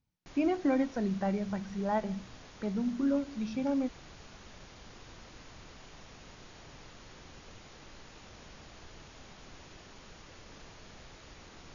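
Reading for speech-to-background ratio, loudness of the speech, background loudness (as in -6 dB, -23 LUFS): 19.5 dB, -32.5 LUFS, -52.0 LUFS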